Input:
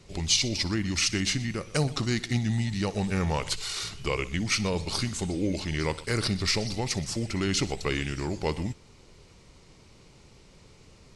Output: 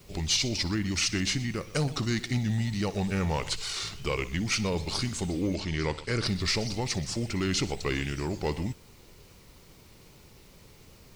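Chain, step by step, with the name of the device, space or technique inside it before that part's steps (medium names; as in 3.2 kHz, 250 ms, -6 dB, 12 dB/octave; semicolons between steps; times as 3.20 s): compact cassette (saturation -18 dBFS, distortion -19 dB; low-pass 9.3 kHz 12 dB/octave; wow and flutter; white noise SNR 32 dB); 5.55–6.26 s: low-pass 7.1 kHz 12 dB/octave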